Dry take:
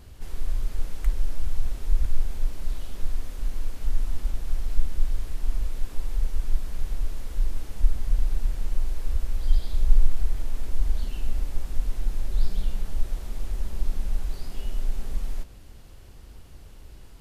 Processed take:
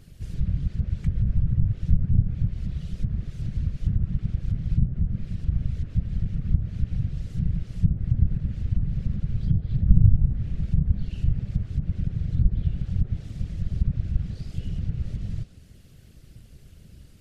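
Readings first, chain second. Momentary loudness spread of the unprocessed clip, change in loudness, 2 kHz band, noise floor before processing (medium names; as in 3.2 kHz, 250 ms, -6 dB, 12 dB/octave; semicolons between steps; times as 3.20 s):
10 LU, +5.5 dB, no reading, -45 dBFS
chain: peaking EQ 910 Hz -15 dB 0.73 oct; low-pass that closes with the level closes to 900 Hz, closed at -12 dBFS; whisper effect; trim -2.5 dB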